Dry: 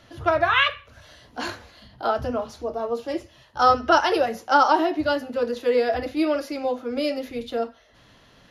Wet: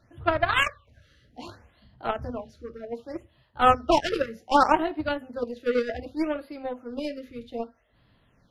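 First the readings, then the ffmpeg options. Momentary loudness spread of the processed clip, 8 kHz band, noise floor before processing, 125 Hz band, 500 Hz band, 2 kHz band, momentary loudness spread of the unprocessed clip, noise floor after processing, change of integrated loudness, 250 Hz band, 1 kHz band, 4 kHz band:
19 LU, can't be measured, −55 dBFS, 0.0 dB, −5.0 dB, −4.0 dB, 14 LU, −64 dBFS, −3.0 dB, −3.5 dB, −3.5 dB, −5.5 dB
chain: -af "aeval=exprs='0.596*(cos(1*acos(clip(val(0)/0.596,-1,1)))-cos(1*PI/2))+0.0473*(cos(3*acos(clip(val(0)/0.596,-1,1)))-cos(3*PI/2))+0.0422*(cos(7*acos(clip(val(0)/0.596,-1,1)))-cos(7*PI/2))':channel_layout=same,bass=frequency=250:gain=7,treble=frequency=4000:gain=-5,afftfilt=real='re*(1-between(b*sr/1024,790*pow(7400/790,0.5+0.5*sin(2*PI*0.65*pts/sr))/1.41,790*pow(7400/790,0.5+0.5*sin(2*PI*0.65*pts/sr))*1.41))':imag='im*(1-between(b*sr/1024,790*pow(7400/790,0.5+0.5*sin(2*PI*0.65*pts/sr))/1.41,790*pow(7400/790,0.5+0.5*sin(2*PI*0.65*pts/sr))*1.41))':win_size=1024:overlap=0.75"

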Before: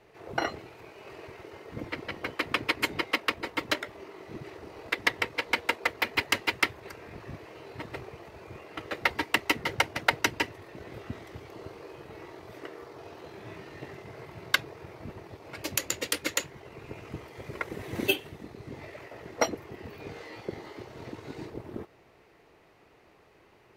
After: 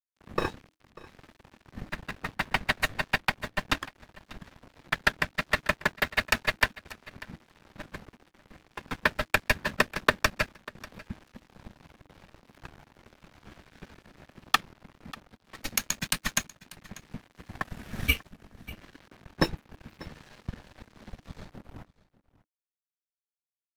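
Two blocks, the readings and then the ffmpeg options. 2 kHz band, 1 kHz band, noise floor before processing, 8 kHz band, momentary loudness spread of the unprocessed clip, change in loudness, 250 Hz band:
+1.5 dB, +1.0 dB, −60 dBFS, +0.5 dB, 18 LU, +2.0 dB, −0.5 dB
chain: -af "aeval=exprs='sgn(val(0))*max(abs(val(0))-0.0075,0)':channel_layout=same,afreqshift=-320,aecho=1:1:592:0.1,volume=2dB"

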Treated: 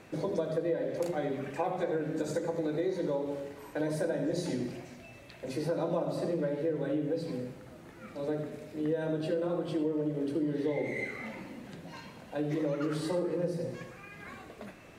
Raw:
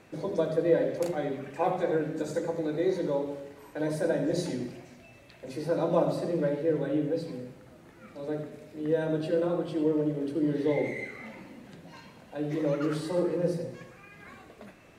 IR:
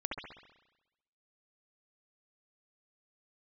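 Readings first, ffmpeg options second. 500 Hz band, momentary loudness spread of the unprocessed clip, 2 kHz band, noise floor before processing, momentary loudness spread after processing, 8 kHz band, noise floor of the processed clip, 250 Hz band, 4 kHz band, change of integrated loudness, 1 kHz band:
−3.5 dB, 20 LU, −1.5 dB, −54 dBFS, 14 LU, −1.0 dB, −51 dBFS, −3.0 dB, −1.5 dB, −3.5 dB, −3.5 dB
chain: -af "acompressor=threshold=-31dB:ratio=5,volume=2.5dB"

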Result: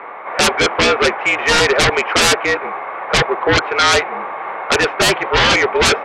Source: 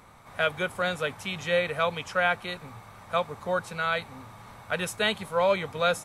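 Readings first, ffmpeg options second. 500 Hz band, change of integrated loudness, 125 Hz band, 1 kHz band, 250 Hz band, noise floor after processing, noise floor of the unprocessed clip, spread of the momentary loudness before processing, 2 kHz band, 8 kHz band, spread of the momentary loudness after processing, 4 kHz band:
+11.0 dB, +14.0 dB, +12.0 dB, +13.0 dB, +14.0 dB, −27 dBFS, −49 dBFS, 17 LU, +14.5 dB, +22.0 dB, 12 LU, +17.5 dB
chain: -af "acontrast=51,highpass=frequency=420:width_type=q:width=0.5412,highpass=frequency=420:width_type=q:width=1.307,lowpass=frequency=2500:width_type=q:width=0.5176,lowpass=frequency=2500:width_type=q:width=0.7071,lowpass=frequency=2500:width_type=q:width=1.932,afreqshift=-53,aeval=exprs='0.398*sin(PI/2*5.62*val(0)/0.398)':channel_layout=same,volume=-1dB"

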